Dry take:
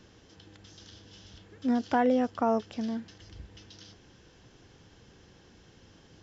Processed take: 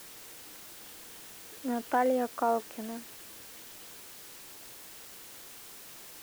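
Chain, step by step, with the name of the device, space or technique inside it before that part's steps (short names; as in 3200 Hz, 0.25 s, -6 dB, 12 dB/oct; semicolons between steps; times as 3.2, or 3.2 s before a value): wax cylinder (BPF 350–2300 Hz; wow and flutter; white noise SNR 12 dB)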